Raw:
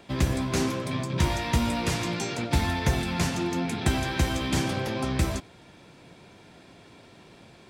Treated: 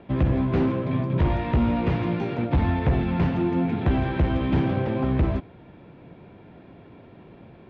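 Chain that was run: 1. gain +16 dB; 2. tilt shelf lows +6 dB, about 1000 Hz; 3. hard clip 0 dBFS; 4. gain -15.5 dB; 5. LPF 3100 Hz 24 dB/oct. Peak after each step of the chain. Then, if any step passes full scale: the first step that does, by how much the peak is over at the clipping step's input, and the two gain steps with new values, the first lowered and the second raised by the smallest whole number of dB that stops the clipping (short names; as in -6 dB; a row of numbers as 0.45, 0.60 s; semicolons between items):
+5.5, +9.0, 0.0, -15.5, -15.0 dBFS; step 1, 9.0 dB; step 1 +7 dB, step 4 -6.5 dB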